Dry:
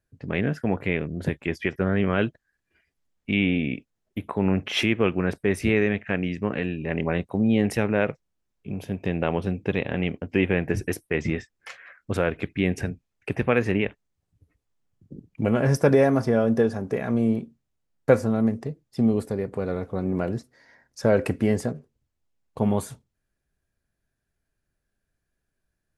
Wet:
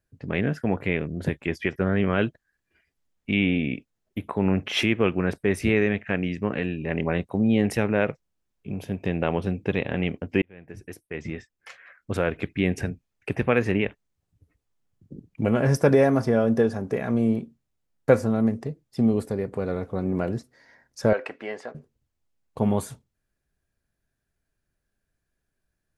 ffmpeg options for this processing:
ffmpeg -i in.wav -filter_complex "[0:a]asettb=1/sr,asplit=3[link_01][link_02][link_03];[link_01]atrim=end=21.134[link_04];[link_02]atrim=start=21.13:end=21.75,asetpts=PTS-STARTPTS,afade=type=in:duration=0.004:curve=qsin,afade=type=out:start_time=0.616:duration=0.004:curve=qsin,highpass=700,lowpass=3200[link_05];[link_03]atrim=start=21.746[link_06];[link_04][link_05]acrossfade=duration=0.004:curve1=hsin:curve2=qsin[link_07];[link_07][link_06]acrossfade=duration=0.004:curve1=qsin:curve2=hsin,asplit=2[link_08][link_09];[link_08]atrim=end=10.42,asetpts=PTS-STARTPTS,afade=type=out:start_time=10.416:duration=0.004:curve=hsin[link_10];[link_09]atrim=start=10.42,asetpts=PTS-STARTPTS,afade=type=in:duration=1.99[link_11];[link_10][link_11]concat=n=2:v=0:a=1" out.wav

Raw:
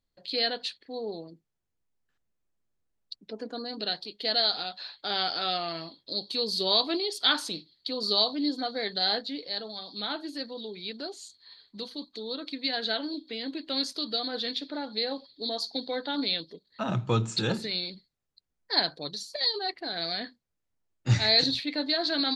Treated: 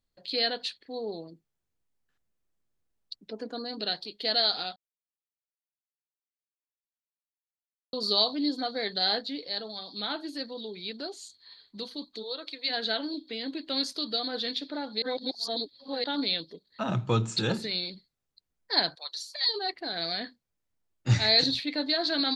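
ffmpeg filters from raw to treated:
ffmpeg -i in.wav -filter_complex "[0:a]asplit=3[link_01][link_02][link_03];[link_01]afade=type=out:start_time=12.22:duration=0.02[link_04];[link_02]highpass=frequency=390:width=0.5412,highpass=frequency=390:width=1.3066,afade=type=in:start_time=12.22:duration=0.02,afade=type=out:start_time=12.69:duration=0.02[link_05];[link_03]afade=type=in:start_time=12.69:duration=0.02[link_06];[link_04][link_05][link_06]amix=inputs=3:normalize=0,asettb=1/sr,asplit=3[link_07][link_08][link_09];[link_07]atrim=end=18.954[link_10];[link_08]atrim=start=18.95:end=19.49,asetpts=PTS-STARTPTS,afade=type=in:duration=0.004:curve=qsin,afade=type=out:start_time=0.536:duration=0.004:curve=qsin,highpass=frequency=820:width=0.5412,highpass=frequency=820:width=1.3066[link_11];[link_09]atrim=start=19.486[link_12];[link_10][link_11]acrossfade=duration=0.004:curve1=hsin:curve2=qsin[link_13];[link_13][link_12]acrossfade=duration=0.004:curve1=qsin:curve2=hsin,asplit=5[link_14][link_15][link_16][link_17][link_18];[link_14]atrim=end=4.76,asetpts=PTS-STARTPTS,afade=type=out:start_time=4.756:duration=0.004:curve=hsin[link_19];[link_15]atrim=start=4.76:end=7.93,asetpts=PTS-STARTPTS,volume=0[link_20];[link_16]atrim=start=7.93:end=15.022,asetpts=PTS-STARTPTS,afade=type=in:duration=0.004:curve=hsin[link_21];[link_17]atrim=start=15.018:end=16.042,asetpts=PTS-STARTPTS,areverse[link_22];[link_18]atrim=start=16.038[link_23];[link_19][link_20][link_21]concat=n=3:v=0:a=1[link_24];[link_24][link_22]acrossfade=duration=0.004:curve1=hsin:curve2=hsin[link_25];[link_25][link_23]acrossfade=duration=0.004:curve1=hsin:curve2=hsin" out.wav

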